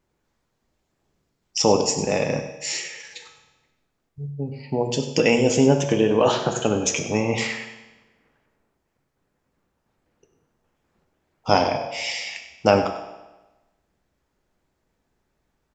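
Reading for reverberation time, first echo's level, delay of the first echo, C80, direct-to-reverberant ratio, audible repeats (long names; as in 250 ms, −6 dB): 1.1 s, −13.5 dB, 98 ms, 8.5 dB, 4.5 dB, 1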